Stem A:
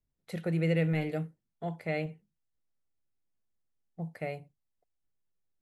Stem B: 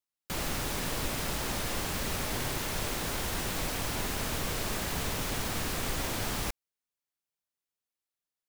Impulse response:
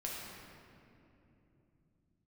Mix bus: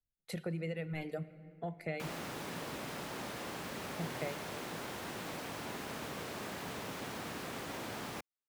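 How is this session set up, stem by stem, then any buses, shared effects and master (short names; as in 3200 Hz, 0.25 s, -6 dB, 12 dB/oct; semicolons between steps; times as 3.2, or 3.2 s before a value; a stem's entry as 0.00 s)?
+1.0 dB, 0.00 s, send -14 dB, reverb removal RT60 1.5 s; compressor 5:1, threshold -39 dBFS, peak gain reduction 12.5 dB; three-band expander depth 40%
-5.5 dB, 1.70 s, no send, HPF 160 Hz 12 dB/oct; high shelf 3700 Hz -10 dB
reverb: on, RT60 3.0 s, pre-delay 5 ms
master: dry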